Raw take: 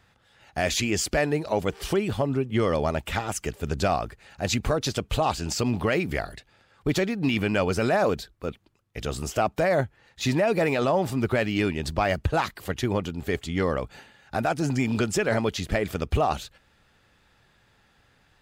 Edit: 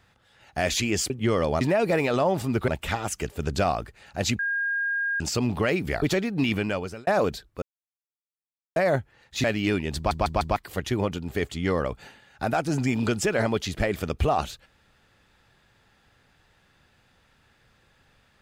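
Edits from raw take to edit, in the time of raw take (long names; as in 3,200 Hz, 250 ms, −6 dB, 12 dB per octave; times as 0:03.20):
0:01.10–0:02.41: remove
0:04.63–0:05.44: beep over 1,620 Hz −23.5 dBFS
0:06.26–0:06.87: remove
0:07.37–0:07.92: fade out
0:08.47–0:09.61: silence
0:10.29–0:11.36: move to 0:02.92
0:11.88: stutter in place 0.15 s, 4 plays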